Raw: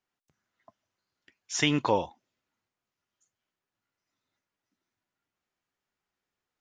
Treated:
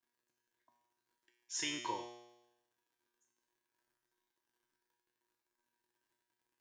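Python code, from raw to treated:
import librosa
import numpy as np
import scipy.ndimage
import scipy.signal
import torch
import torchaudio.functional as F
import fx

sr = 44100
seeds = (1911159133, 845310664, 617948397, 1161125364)

y = F.preemphasis(torch.from_numpy(x), 0.9).numpy()
y = fx.dmg_crackle(y, sr, seeds[0], per_s=110.0, level_db=-64.0)
y = fx.comb_fb(y, sr, f0_hz=120.0, decay_s=0.97, harmonics='all', damping=0.0, mix_pct=90)
y = fx.small_body(y, sr, hz=(340.0, 950.0, 1600.0), ring_ms=35, db=15)
y = y * librosa.db_to_amplitude(9.0)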